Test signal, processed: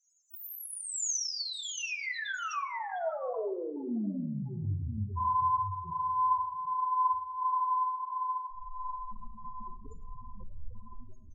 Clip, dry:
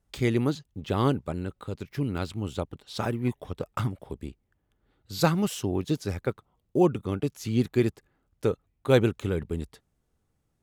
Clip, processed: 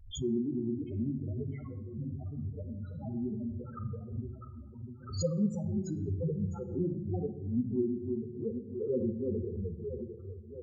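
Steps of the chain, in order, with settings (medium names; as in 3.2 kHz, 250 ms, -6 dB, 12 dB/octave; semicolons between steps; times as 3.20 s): peaking EQ 6.6 kHz +9.5 dB 0.49 oct; echo whose repeats swap between lows and highs 326 ms, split 850 Hz, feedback 71%, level -3 dB; chorus voices 6, 1.3 Hz, delay 11 ms, depth 3 ms; loudest bins only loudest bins 4; simulated room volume 2700 m³, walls furnished, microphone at 1.6 m; swell ahead of each attack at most 100 dB/s; trim -5.5 dB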